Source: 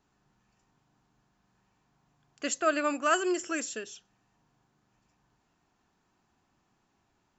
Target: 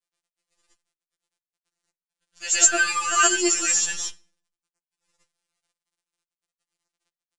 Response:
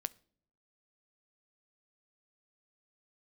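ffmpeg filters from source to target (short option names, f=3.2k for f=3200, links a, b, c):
-filter_complex "[0:a]crystalizer=i=9.5:c=0,acrusher=bits=6:dc=4:mix=0:aa=0.000001,asplit=2[a][b];[1:a]atrim=start_sample=2205,adelay=119[c];[b][c]afir=irnorm=-1:irlink=0,volume=9dB[d];[a][d]amix=inputs=2:normalize=0,aresample=22050,aresample=44100,afftfilt=real='re*2.83*eq(mod(b,8),0)':imag='im*2.83*eq(mod(b,8),0)':win_size=2048:overlap=0.75,volume=-6.5dB"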